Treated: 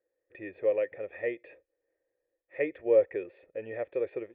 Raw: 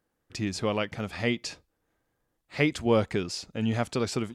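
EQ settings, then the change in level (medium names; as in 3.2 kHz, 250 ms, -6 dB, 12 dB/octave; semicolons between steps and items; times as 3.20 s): cascade formant filter e; resonant low shelf 280 Hz -6.5 dB, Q 3; +4.5 dB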